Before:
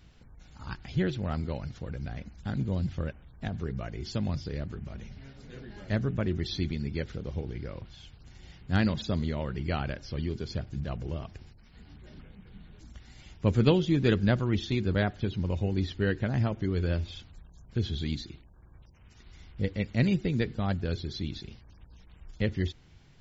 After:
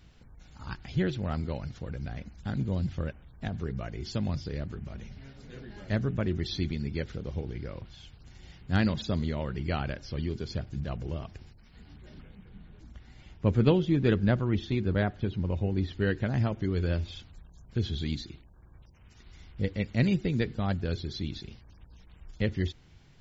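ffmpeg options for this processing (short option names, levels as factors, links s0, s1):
-filter_complex "[0:a]asettb=1/sr,asplit=3[s0][s1][s2];[s0]atrim=end=12.454[s3];[s1]atrim=start=12.45:end=15.93,asetpts=PTS-STARTPTS,afade=t=in:d=0.004:c=qsin,afade=t=out:st=3.476:d=0.004:c=qsin,lowpass=f=2400:p=1[s4];[s2]atrim=start=15.926[s5];[s3][s4]acrossfade=d=0.004:c1=hsin:c2=qsin[s6];[s6][s5]acrossfade=d=0.004:c1=qsin:c2=hsin"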